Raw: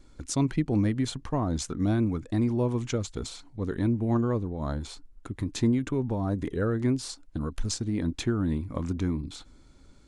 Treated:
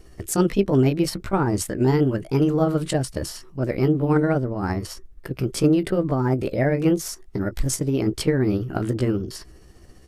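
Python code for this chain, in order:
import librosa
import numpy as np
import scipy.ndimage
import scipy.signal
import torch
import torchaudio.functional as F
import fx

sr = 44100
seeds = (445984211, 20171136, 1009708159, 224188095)

y = fx.pitch_heads(x, sr, semitones=4.5)
y = F.gain(torch.from_numpy(y), 7.5).numpy()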